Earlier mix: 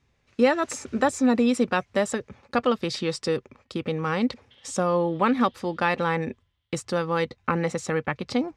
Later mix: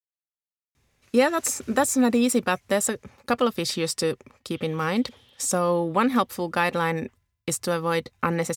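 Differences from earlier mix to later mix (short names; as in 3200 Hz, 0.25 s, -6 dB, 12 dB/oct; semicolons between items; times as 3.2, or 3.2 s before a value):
speech: entry +0.75 s; master: remove air absorption 97 m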